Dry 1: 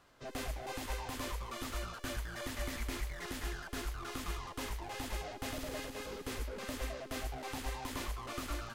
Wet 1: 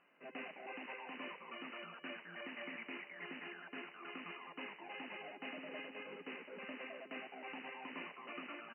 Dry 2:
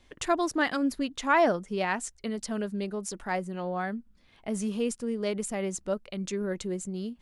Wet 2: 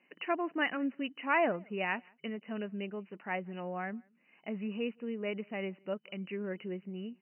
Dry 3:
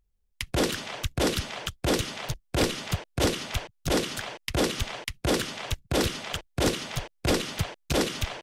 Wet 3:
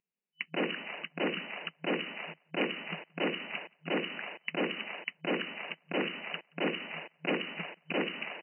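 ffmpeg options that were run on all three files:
-filter_complex "[0:a]afftfilt=real='re*between(b*sr/4096,160,3000)':imag='im*between(b*sr/4096,160,3000)':win_size=4096:overlap=0.75,aexciter=amount=2.8:drive=3:freq=2k,asplit=2[a][b];[b]adelay=174.9,volume=-29dB,highshelf=f=4k:g=-3.94[c];[a][c]amix=inputs=2:normalize=0,volume=-6.5dB"

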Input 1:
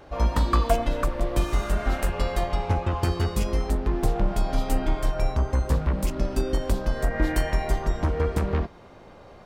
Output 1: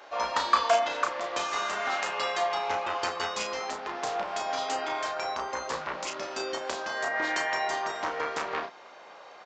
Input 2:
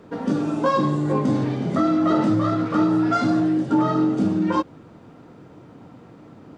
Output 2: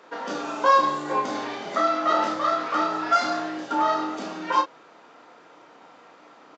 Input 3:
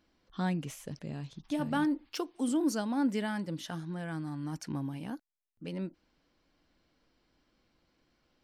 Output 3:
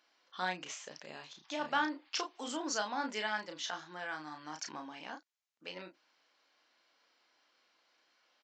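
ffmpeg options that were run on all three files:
-filter_complex "[0:a]highpass=790,asplit=2[a][b];[b]adelay=33,volume=-5.5dB[c];[a][c]amix=inputs=2:normalize=0,aresample=16000,aresample=44100,volume=4dB"

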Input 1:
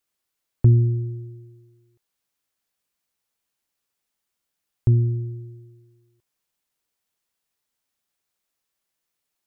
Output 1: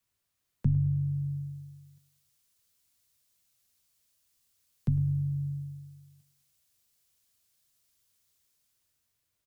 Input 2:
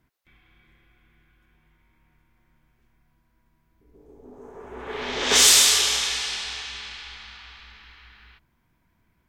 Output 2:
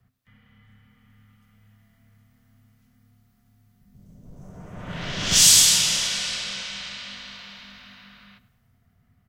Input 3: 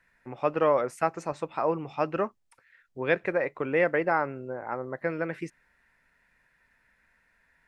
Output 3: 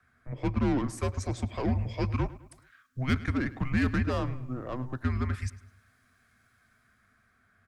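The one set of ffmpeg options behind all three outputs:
-filter_complex "[0:a]equalizer=f=160:t=o:w=0.8:g=14,bandreject=f=1.1k:w=13,acrossover=split=270|460|3700[a][b][c][d];[a]acompressor=threshold=-29dB:ratio=6[e];[c]asoftclip=type=tanh:threshold=-28.5dB[f];[d]dynaudnorm=f=310:g=7:m=10dB[g];[e][b][f][g]amix=inputs=4:normalize=0,afreqshift=-260,asplit=2[h][i];[i]adelay=105,lowpass=f=4.6k:p=1,volume=-17dB,asplit=2[j][k];[k]adelay=105,lowpass=f=4.6k:p=1,volume=0.46,asplit=2[l][m];[m]adelay=105,lowpass=f=4.6k:p=1,volume=0.46,asplit=2[n][o];[o]adelay=105,lowpass=f=4.6k:p=1,volume=0.46[p];[h][j][l][n][p]amix=inputs=5:normalize=0,volume=-1dB"

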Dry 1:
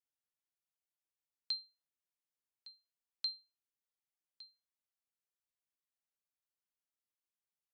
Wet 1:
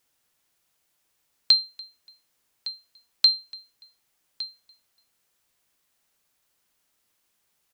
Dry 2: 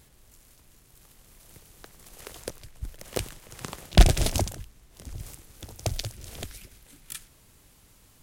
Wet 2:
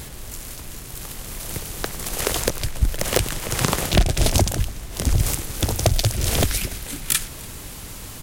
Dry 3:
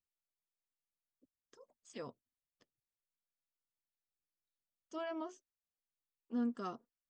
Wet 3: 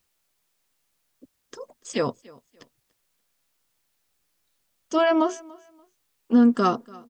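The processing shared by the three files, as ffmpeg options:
-filter_complex "[0:a]acompressor=threshold=-33dB:ratio=20,apsyclip=29dB,asplit=2[a][b];[b]aecho=0:1:289|578:0.0668|0.0174[c];[a][c]amix=inputs=2:normalize=0,volume=-7.5dB"

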